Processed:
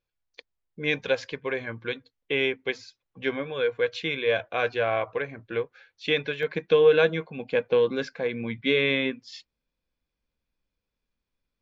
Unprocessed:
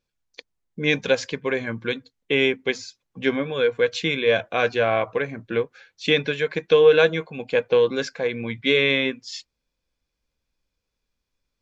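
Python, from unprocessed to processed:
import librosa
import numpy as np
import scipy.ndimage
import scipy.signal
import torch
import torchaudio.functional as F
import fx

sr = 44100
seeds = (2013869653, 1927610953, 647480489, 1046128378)

y = scipy.signal.sosfilt(scipy.signal.butter(2, 4200.0, 'lowpass', fs=sr, output='sos'), x)
y = fx.peak_eq(y, sr, hz=210.0, db=fx.steps((0.0, -7.0), (6.43, 3.0)), octaves=0.97)
y = F.gain(torch.from_numpy(y), -4.0).numpy()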